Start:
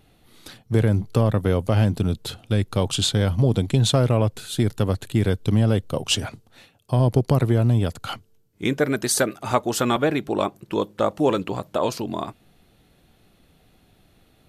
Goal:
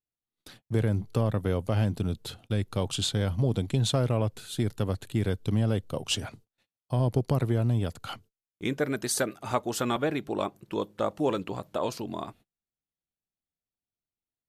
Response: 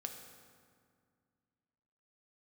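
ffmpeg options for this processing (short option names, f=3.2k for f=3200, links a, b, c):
-af "agate=range=-36dB:threshold=-45dB:ratio=16:detection=peak,volume=-7dB"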